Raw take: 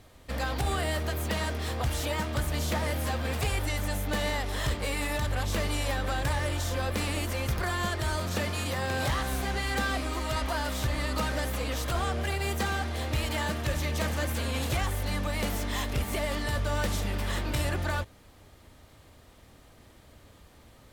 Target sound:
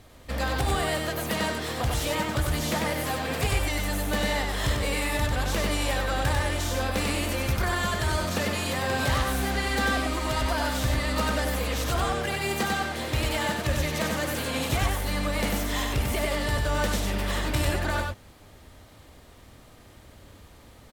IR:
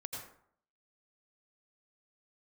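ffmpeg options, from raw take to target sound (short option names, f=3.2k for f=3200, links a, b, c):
-af "aecho=1:1:96:0.668,volume=2.5dB"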